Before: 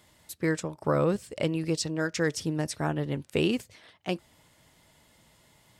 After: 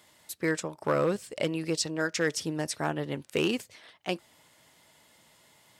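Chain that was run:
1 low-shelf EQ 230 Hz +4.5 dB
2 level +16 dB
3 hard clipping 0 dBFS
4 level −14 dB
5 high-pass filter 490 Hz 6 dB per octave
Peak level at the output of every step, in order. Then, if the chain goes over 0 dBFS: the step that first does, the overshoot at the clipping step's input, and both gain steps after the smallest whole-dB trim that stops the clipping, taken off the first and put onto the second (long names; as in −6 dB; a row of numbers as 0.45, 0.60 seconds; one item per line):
−10.5, +5.5, 0.0, −14.0, −13.0 dBFS
step 2, 5.5 dB
step 2 +10 dB, step 4 −8 dB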